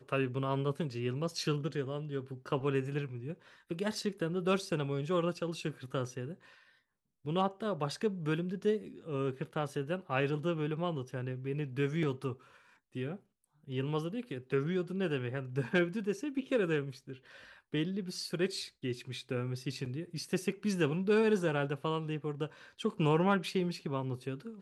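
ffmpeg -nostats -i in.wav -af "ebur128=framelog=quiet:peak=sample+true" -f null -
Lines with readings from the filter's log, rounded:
Integrated loudness:
  I:         -34.8 LUFS
  Threshold: -45.2 LUFS
Loudness range:
  LRA:         4.6 LU
  Threshold: -55.3 LUFS
  LRA low:   -37.5 LUFS
  LRA high:  -32.9 LUFS
Sample peak:
  Peak:      -15.9 dBFS
True peak:
  Peak:      -15.9 dBFS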